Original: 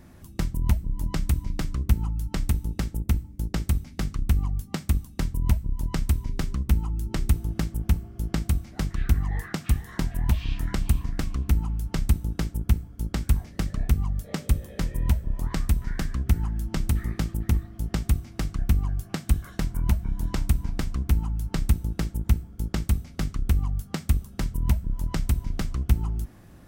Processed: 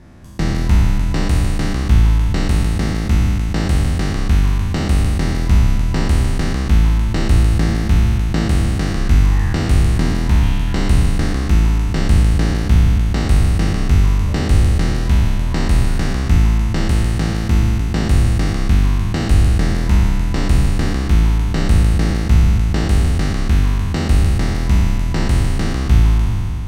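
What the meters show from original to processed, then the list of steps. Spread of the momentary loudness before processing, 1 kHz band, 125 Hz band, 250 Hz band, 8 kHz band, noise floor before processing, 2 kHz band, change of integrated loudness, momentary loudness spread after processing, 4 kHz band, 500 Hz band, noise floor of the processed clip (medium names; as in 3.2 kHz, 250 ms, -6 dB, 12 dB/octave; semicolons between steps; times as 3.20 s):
5 LU, +13.5 dB, +11.0 dB, +12.0 dB, +9.0 dB, -47 dBFS, +13.5 dB, +11.0 dB, 5 LU, +12.5 dB, +14.0 dB, -19 dBFS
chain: spectral sustain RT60 2.91 s; distance through air 58 m; trim +4.5 dB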